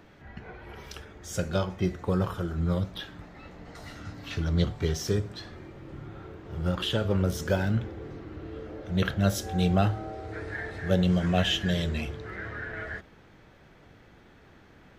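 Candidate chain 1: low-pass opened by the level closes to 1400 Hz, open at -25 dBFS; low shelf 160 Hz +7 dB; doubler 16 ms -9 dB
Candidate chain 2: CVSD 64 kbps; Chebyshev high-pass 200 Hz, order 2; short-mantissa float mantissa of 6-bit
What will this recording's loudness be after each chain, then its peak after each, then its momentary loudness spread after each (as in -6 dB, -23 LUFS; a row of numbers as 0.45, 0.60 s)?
-26.0, -31.5 LUFS; -9.0, -12.5 dBFS; 20, 19 LU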